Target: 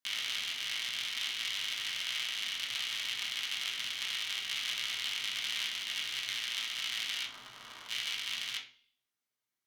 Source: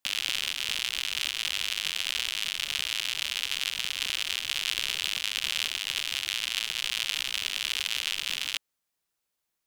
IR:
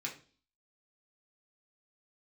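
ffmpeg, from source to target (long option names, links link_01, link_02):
-filter_complex "[0:a]asplit=3[link_01][link_02][link_03];[link_01]afade=type=out:start_time=7.24:duration=0.02[link_04];[link_02]highshelf=frequency=1600:width_type=q:width=1.5:gain=-13.5,afade=type=in:start_time=7.24:duration=0.02,afade=type=out:start_time=7.88:duration=0.02[link_05];[link_03]afade=type=in:start_time=7.88:duration=0.02[link_06];[link_04][link_05][link_06]amix=inputs=3:normalize=0[link_07];[1:a]atrim=start_sample=2205,asetrate=38808,aresample=44100[link_08];[link_07][link_08]afir=irnorm=-1:irlink=0,volume=-6.5dB"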